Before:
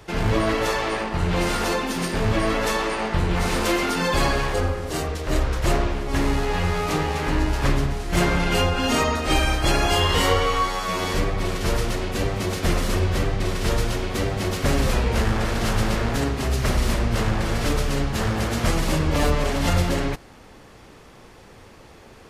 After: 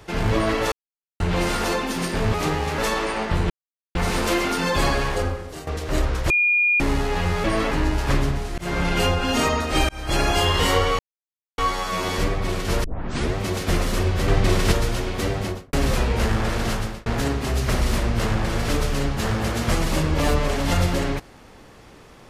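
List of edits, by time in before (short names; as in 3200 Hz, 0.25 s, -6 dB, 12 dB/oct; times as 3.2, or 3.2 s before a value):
0.72–1.2 mute
2.34–2.61 swap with 6.82–7.26
3.33 insert silence 0.45 s
4.53–5.05 fade out, to -14 dB
5.68–6.18 bleep 2430 Hz -15.5 dBFS
8.13–8.48 fade in equal-power
9.44–9.76 fade in
10.54 insert silence 0.59 s
11.8 tape start 0.51 s
13.24–13.68 gain +5.5 dB
14.35–14.69 studio fade out
15.61–16.02 fade out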